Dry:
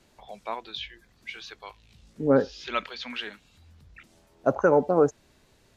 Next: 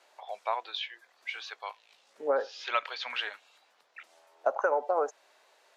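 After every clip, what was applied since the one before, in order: high-pass 630 Hz 24 dB/octave; tilt EQ -2.5 dB/octave; compression 6:1, threshold -28 dBFS, peak gain reduction 9 dB; trim +4.5 dB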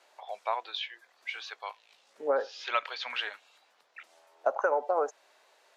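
no audible change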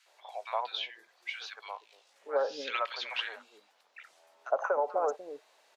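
three bands offset in time highs, mids, lows 60/300 ms, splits 340/1400 Hz

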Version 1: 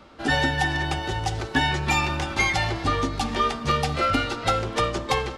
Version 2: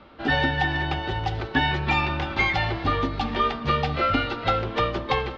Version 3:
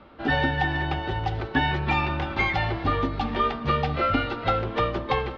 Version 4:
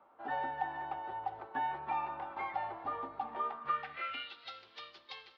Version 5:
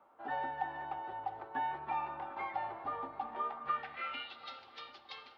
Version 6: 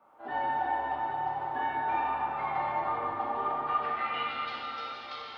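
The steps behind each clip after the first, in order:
low-pass 4 kHz 24 dB/octave
treble shelf 3.2 kHz -7.5 dB
band-pass sweep 880 Hz -> 4.6 kHz, 3.46–4.49 s; trim -6.5 dB
feedback echo behind a low-pass 371 ms, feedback 76%, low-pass 1.7 kHz, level -16.5 dB; trim -1 dB
plate-style reverb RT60 4.2 s, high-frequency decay 0.6×, DRR -7.5 dB

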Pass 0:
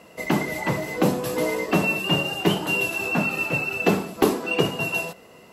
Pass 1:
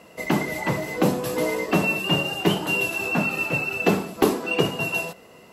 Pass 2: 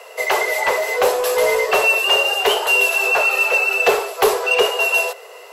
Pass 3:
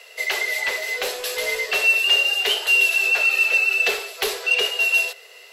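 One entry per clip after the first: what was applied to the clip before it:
no audible change
steep high-pass 400 Hz 96 dB/octave; in parallel at +2.5 dB: saturation -24 dBFS, distortion -10 dB; on the sum: short-mantissa float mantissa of 6-bit; trim +3.5 dB
graphic EQ 125/500/1000/2000/4000 Hz -10/-6/-11/+4/+7 dB; trim -5 dB

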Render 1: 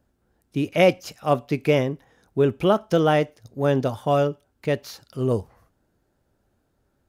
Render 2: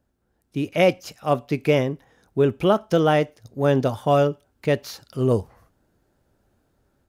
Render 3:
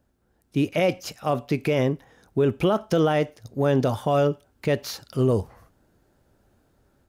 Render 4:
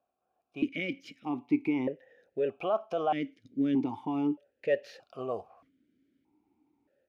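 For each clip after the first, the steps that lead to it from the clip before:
level rider gain up to 6.5 dB; trim -3.5 dB
peak limiter -15.5 dBFS, peak gain reduction 9.5 dB; trim +3 dB
stepped vowel filter 1.6 Hz; trim +3 dB

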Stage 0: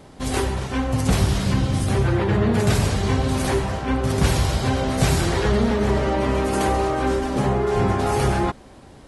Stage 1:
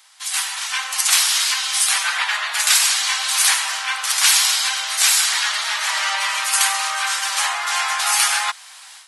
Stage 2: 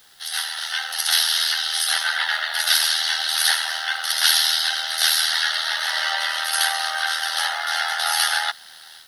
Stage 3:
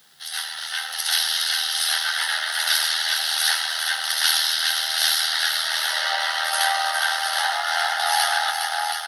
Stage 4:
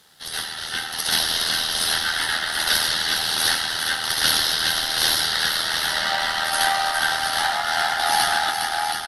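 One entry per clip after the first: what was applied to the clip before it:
Bessel high-pass 1.6 kHz, order 8; treble shelf 2.7 kHz +9 dB; level rider gain up to 12.5 dB
static phaser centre 1.6 kHz, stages 8; AM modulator 80 Hz, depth 45%; word length cut 10-bit, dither triangular; trim +4 dB
high-pass sweep 150 Hz -> 700 Hz, 5.35–6.24 s; on a send: multi-tap echo 411/724 ms -5.5/-7 dB; on the sum: trim -3 dB
in parallel at -12 dB: sample-and-hold 14×; on the sum: resampled via 32 kHz

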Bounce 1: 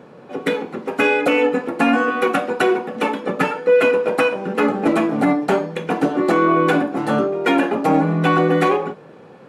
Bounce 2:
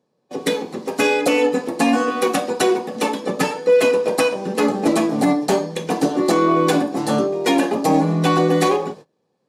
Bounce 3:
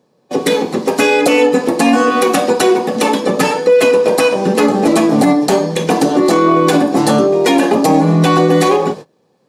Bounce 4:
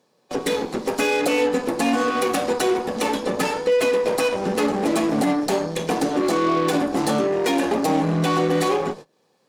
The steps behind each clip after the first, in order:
gate -36 dBFS, range -27 dB; resonant high shelf 3.5 kHz +10 dB, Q 1.5; band-stop 1.4 kHz, Q 5.6
compression, threshold -18 dBFS, peak gain reduction 8 dB; loudness maximiser +12.5 dB; trim -1 dB
Chebyshev shaper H 8 -22 dB, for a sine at -2 dBFS; bass shelf 110 Hz -5 dB; tape noise reduction on one side only encoder only; trim -9 dB

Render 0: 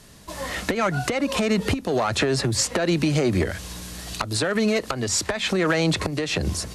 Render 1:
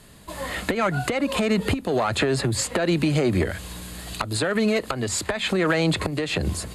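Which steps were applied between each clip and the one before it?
peaking EQ 5.7 kHz -15 dB 0.24 oct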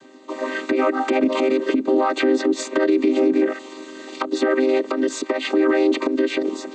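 vocoder on a held chord minor triad, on C4; peak limiter -18 dBFS, peak gain reduction 9 dB; trim +8.5 dB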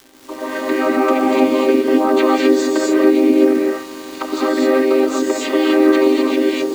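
in parallel at -5 dB: bit crusher 6-bit; on the sum: crackle 270 per s -26 dBFS; gated-style reverb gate 280 ms rising, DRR -3.5 dB; trim -5 dB

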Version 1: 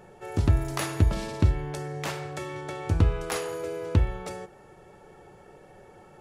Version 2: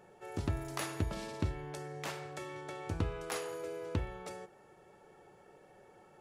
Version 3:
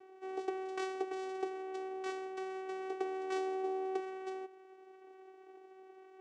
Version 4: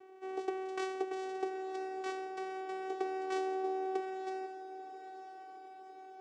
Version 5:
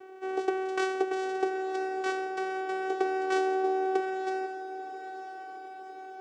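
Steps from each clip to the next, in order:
bass shelf 110 Hz -11 dB; trim -7.5 dB
vocoder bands 4, saw 379 Hz; trim +2 dB
echo that smears into a reverb 986 ms, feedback 52%, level -11.5 dB; trim +1 dB
small resonant body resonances 540/1500/2900 Hz, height 7 dB; trim +7.5 dB

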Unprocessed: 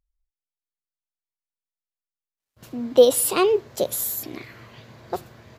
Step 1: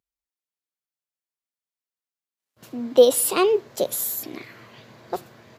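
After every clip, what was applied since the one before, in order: high-pass 150 Hz 12 dB/octave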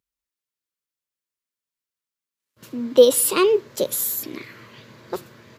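peaking EQ 730 Hz -14 dB 0.28 oct; trim +2.5 dB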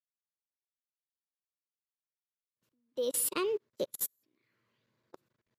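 level held to a coarse grid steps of 24 dB; upward expansion 2.5:1, over -40 dBFS; trim -5 dB

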